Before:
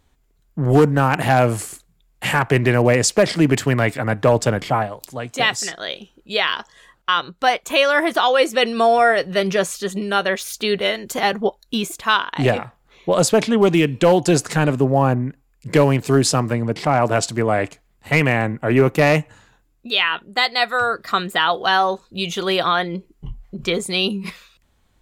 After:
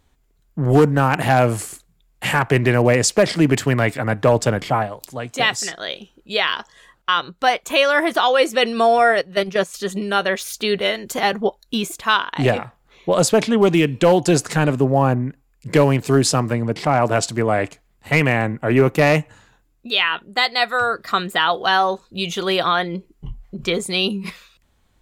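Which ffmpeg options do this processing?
ffmpeg -i in.wav -filter_complex "[0:a]asettb=1/sr,asplit=3[link_01][link_02][link_03];[link_01]atrim=end=9.214[link_04];[link_02]atrim=start=9.21:end=9.74,asetpts=PTS-STARTPTS,afade=type=in:duration=0.004:curve=qsin,afade=type=out:start_time=0.526:duration=0.004:curve=qsin,agate=range=-10dB:threshold=-20dB:ratio=16:release=100:detection=peak[link_05];[link_03]atrim=start=9.736[link_06];[link_04][link_05]acrossfade=duration=0.004:curve1=hsin:curve2=qsin[link_07];[link_07][link_06]acrossfade=duration=0.004:curve1=qsin:curve2=hsin" out.wav

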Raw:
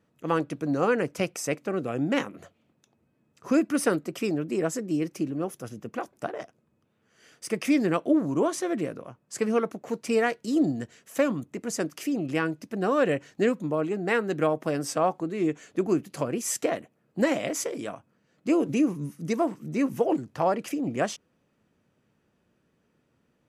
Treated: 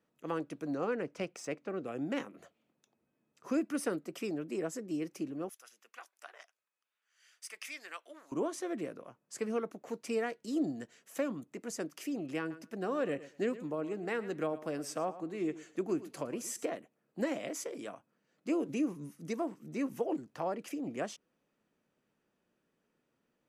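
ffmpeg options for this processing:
ffmpeg -i in.wav -filter_complex "[0:a]asettb=1/sr,asplit=3[link_01][link_02][link_03];[link_01]atrim=end=0.754[link_04];[link_02]atrim=start=0.75:end=1.85,asetpts=PTS-STARTPTS,afade=type=in:duration=0.004:curve=qsin,afade=type=out:start_time=1.096:duration=0.004:curve=qsin,adynamicsmooth=sensitivity=3:basefreq=5400[link_05];[link_03]atrim=start=1.846[link_06];[link_04][link_05]acrossfade=duration=0.004:curve1=hsin:curve2=qsin[link_07];[link_07][link_06]acrossfade=duration=0.004:curve1=qsin:curve2=hsin,asettb=1/sr,asplit=3[link_08][link_09][link_10];[link_08]atrim=end=5.494[link_11];[link_09]atrim=start=5.49:end=8.32,asetpts=PTS-STARTPTS,afade=type=in:duration=0.004:curve=qsin,afade=type=out:start_time=2.826:duration=0.004:curve=qsin,highpass=1500[link_12];[link_10]atrim=start=8.316[link_13];[link_11][link_12]acrossfade=duration=0.004:curve1=hsin:curve2=qsin[link_14];[link_14][link_13]acrossfade=duration=0.004:curve1=qsin:curve2=hsin,asettb=1/sr,asplit=3[link_15][link_16][link_17];[link_15]atrim=end=12.394[link_18];[link_16]atrim=start=12.39:end=16.65,asetpts=PTS-STARTPTS,afade=type=in:duration=0.004:curve=qsin,afade=type=out:start_time=4.256:duration=0.004:curve=qsin,aecho=1:1:113|226:0.158|0.0254,atrim=end_sample=187866[link_19];[link_17]atrim=start=16.646[link_20];[link_18][link_19]acrossfade=duration=0.004:curve1=hsin:curve2=qsin[link_21];[link_21][link_20]acrossfade=duration=0.004:curve1=qsin:curve2=hsin,equalizer=frequency=87:width=0.87:gain=-12.5,acrossover=split=470[link_22][link_23];[link_23]acompressor=threshold=-37dB:ratio=1.5[link_24];[link_22][link_24]amix=inputs=2:normalize=0,volume=-7dB" out.wav

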